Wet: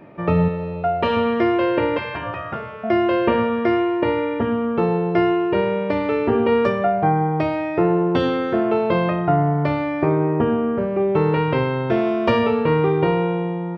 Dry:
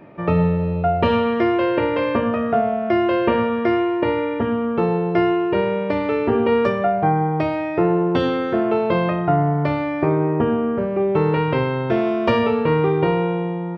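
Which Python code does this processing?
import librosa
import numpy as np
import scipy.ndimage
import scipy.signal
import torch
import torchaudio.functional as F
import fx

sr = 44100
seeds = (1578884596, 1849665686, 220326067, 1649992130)

y = fx.low_shelf(x, sr, hz=250.0, db=-10.0, at=(0.48, 1.17))
y = fx.spec_gate(y, sr, threshold_db=-10, keep='weak', at=(1.98, 2.84))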